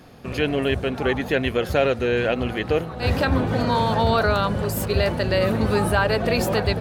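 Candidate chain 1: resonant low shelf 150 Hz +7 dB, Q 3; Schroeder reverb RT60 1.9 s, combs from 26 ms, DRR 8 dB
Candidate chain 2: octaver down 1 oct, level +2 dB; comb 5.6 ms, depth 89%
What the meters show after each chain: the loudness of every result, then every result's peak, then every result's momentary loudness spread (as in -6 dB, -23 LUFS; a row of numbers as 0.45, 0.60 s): -18.0, -18.5 LUFS; -2.0, -3.5 dBFS; 6, 5 LU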